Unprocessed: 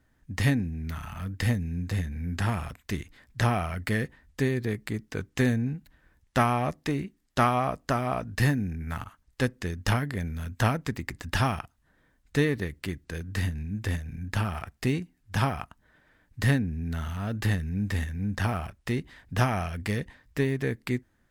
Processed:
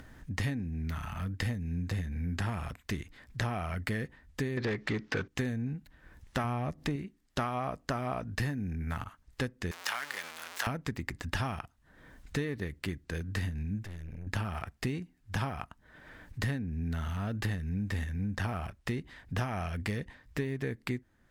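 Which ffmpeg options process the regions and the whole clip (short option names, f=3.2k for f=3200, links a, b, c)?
-filter_complex "[0:a]asettb=1/sr,asplit=3[a][b][c];[a]atrim=end=4.574[d];[b]atrim=start=4.57:end=5.28,asetpts=PTS-STARTPTS,afade=t=in:d=0.004:c=qsin,afade=t=out:st=0.706:d=0.004:c=qsin,lowpass=f=6.1k:w=0.5412,lowpass=f=6.1k:w=1.3066,aeval=exprs='0.15*sin(PI/2*1.58*val(0)/0.15)':c=same,asplit=2[e][f];[f]highpass=f=720:p=1,volume=18dB,asoftclip=type=tanh:threshold=-16dB[g];[e][g]amix=inputs=2:normalize=0,lowpass=f=3.3k:p=1,volume=-6dB[h];[c]atrim=start=5.276[i];[d][h]acrossfade=d=0.004:c1=hsin:c2=qsin[j];[j][i]acrossfade=d=0.004:c1=qsin:c2=hsin,asettb=1/sr,asplit=3[k][l][m];[k]atrim=end=6.444[n];[l]atrim=start=6.44:end=6.96,asetpts=PTS-STARTPTS,afade=t=in:d=0.004:c=qsin,afade=t=out:st=0.516:d=0.004:c=qsin,lowshelf=f=210:g=8.5,acompressor=mode=upward:threshold=-30dB:ratio=2.5:attack=3.2:release=140:knee=2.83:detection=peak[o];[m]atrim=start=6.956[p];[n][o]acrossfade=d=0.004:c1=hsin:c2=qsin[q];[q][p]acrossfade=d=0.004:c1=qsin:c2=hsin,asettb=1/sr,asplit=3[r][s][t];[r]atrim=end=9.714[u];[s]atrim=start=9.71:end=10.67,asetpts=PTS-STARTPTS,afade=t=in:d=0.004:c=qsin,afade=t=out:st=0.956:d=0.004:c=qsin,aeval=exprs='val(0)+0.5*0.0447*sgn(val(0))':c=same,highpass=1.1k[v];[t]atrim=start=10.666[w];[u][v]acrossfade=d=0.004:c1=hsin:c2=qsin[x];[x][w]acrossfade=d=0.004:c1=qsin:c2=hsin,asettb=1/sr,asplit=3[y][z][aa];[y]atrim=end=13.834[ab];[z]atrim=start=13.83:end=14.27,asetpts=PTS-STARTPTS,afade=t=in:d=0.004:c=qsin,afade=t=out:st=0.436:d=0.004:c=qsin,acompressor=threshold=-34dB:ratio=6:attack=3.2:release=140:knee=1:detection=peak,aeval=exprs='(tanh(100*val(0)+0.75)-tanh(0.75))/100':c=same[ac];[aa]atrim=start=14.266[ad];[ab][ac]acrossfade=d=0.004:c1=hsin:c2=qsin[ae];[ae][ad]acrossfade=d=0.004:c1=qsin:c2=hsin,acompressor=mode=upward:threshold=-38dB:ratio=2.5,highshelf=f=7.3k:g=-5,acompressor=threshold=-30dB:ratio=5"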